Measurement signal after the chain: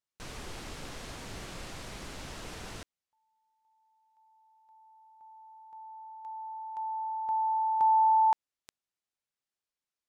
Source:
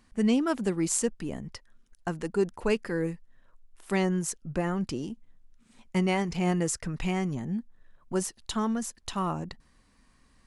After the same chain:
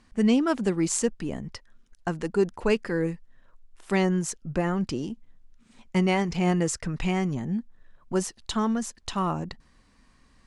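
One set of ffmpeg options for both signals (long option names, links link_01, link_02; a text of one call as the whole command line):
ffmpeg -i in.wav -af "lowpass=8100,volume=3dB" out.wav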